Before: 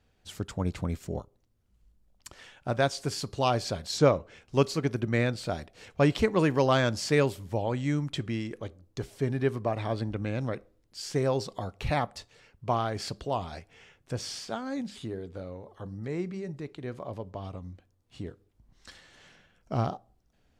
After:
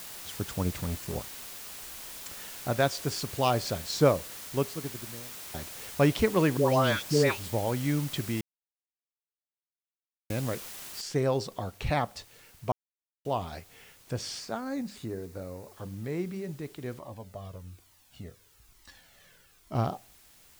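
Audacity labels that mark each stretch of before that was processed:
0.700000	1.160000	hard clip -28.5 dBFS
3.830000	5.540000	studio fade out
6.570000	7.530000	dispersion highs, late by 0.142 s, half as late at 970 Hz
8.410000	10.300000	mute
11.010000	11.010000	noise floor step -43 dB -58 dB
12.720000	13.250000	mute
14.400000	15.730000	bell 3200 Hz -10.5 dB 0.29 oct
16.990000	19.750000	cascading flanger falling 1.1 Hz

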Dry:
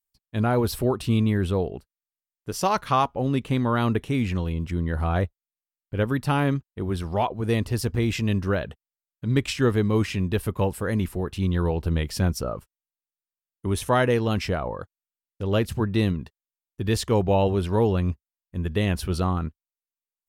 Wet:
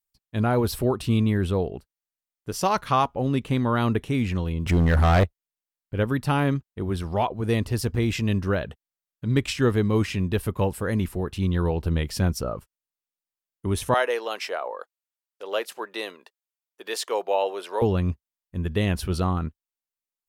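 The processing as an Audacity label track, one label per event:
4.660000	5.240000	sample leveller passes 3
13.940000	17.820000	HPF 470 Hz 24 dB/oct

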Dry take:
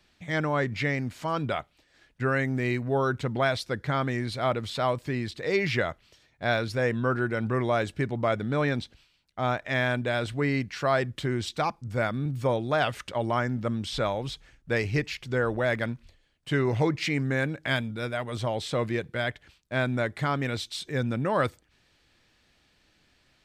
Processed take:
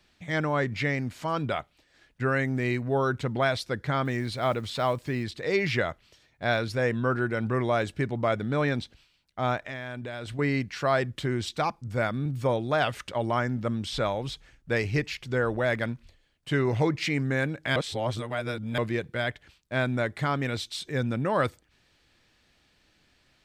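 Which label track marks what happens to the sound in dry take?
4.050000	5.240000	block floating point 7-bit
9.630000	10.390000	compressor, threshold -33 dBFS
17.760000	18.780000	reverse

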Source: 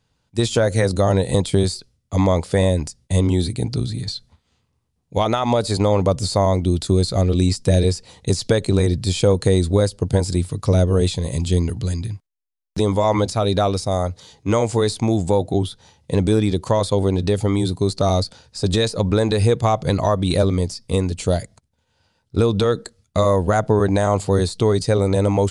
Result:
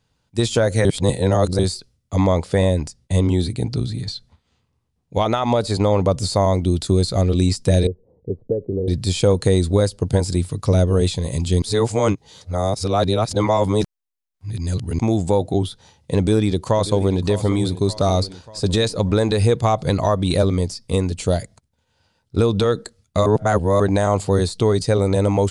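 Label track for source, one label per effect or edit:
0.850000	1.590000	reverse
2.140000	6.140000	high shelf 6900 Hz -6 dB
7.870000	8.880000	ladder low-pass 540 Hz, resonance 50%
11.620000	14.990000	reverse
16.190000	17.230000	echo throw 0.59 s, feedback 55%, level -14 dB
23.260000	23.800000	reverse

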